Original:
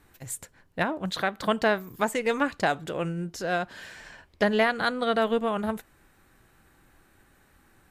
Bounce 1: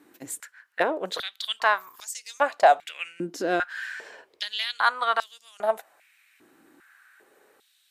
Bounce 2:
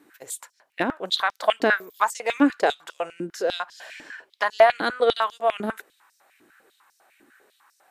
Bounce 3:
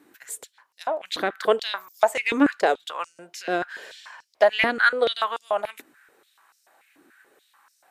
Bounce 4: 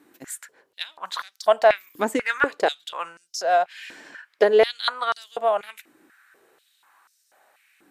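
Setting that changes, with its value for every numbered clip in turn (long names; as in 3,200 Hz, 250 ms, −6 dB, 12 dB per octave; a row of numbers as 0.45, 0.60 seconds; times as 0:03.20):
high-pass on a step sequencer, speed: 2.5, 10, 6.9, 4.1 Hertz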